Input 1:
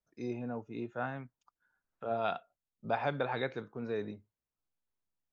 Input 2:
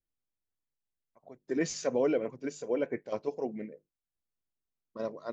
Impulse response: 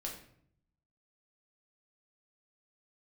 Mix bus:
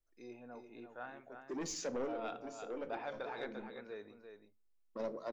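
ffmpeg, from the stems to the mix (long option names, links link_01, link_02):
-filter_complex "[0:a]volume=-9.5dB,asplit=4[link_01][link_02][link_03][link_04];[link_02]volume=-11.5dB[link_05];[link_03]volume=-6.5dB[link_06];[1:a]lowshelf=frequency=440:gain=11.5,acrossover=split=270|3000[link_07][link_08][link_09];[link_08]acompressor=threshold=-33dB:ratio=2[link_10];[link_07][link_10][link_09]amix=inputs=3:normalize=0,asoftclip=type=tanh:threshold=-25.5dB,volume=-2.5dB,asplit=2[link_11][link_12];[link_12]volume=-11dB[link_13];[link_04]apad=whole_len=234734[link_14];[link_11][link_14]sidechaincompress=threshold=-51dB:ratio=8:attack=35:release=1110[link_15];[2:a]atrim=start_sample=2205[link_16];[link_05][link_13]amix=inputs=2:normalize=0[link_17];[link_17][link_16]afir=irnorm=-1:irlink=0[link_18];[link_06]aecho=0:1:344:1[link_19];[link_01][link_15][link_18][link_19]amix=inputs=4:normalize=0,equalizer=frequency=130:width=0.74:gain=-15,asoftclip=type=tanh:threshold=-30dB"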